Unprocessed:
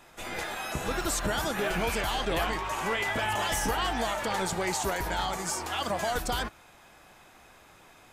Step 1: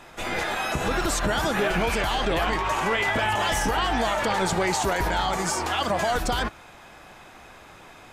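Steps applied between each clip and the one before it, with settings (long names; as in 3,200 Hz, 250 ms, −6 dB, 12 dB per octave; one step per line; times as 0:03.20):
high-shelf EQ 7,700 Hz −9.5 dB
brickwall limiter −24 dBFS, peak gain reduction 6 dB
level +8.5 dB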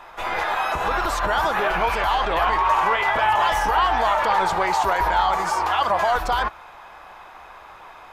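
graphic EQ with 10 bands 125 Hz −8 dB, 250 Hz −8 dB, 1,000 Hz +10 dB, 8,000 Hz −9 dB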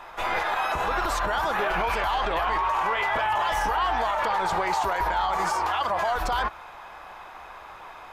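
brickwall limiter −17 dBFS, peak gain reduction 8.5 dB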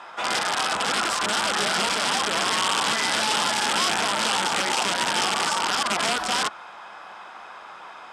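wrap-around overflow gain 19 dB
loudspeaker in its box 180–9,900 Hz, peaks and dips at 210 Hz +6 dB, 1,400 Hz +5 dB, 3,200 Hz +5 dB, 5,100 Hz +6 dB, 8,200 Hz +6 dB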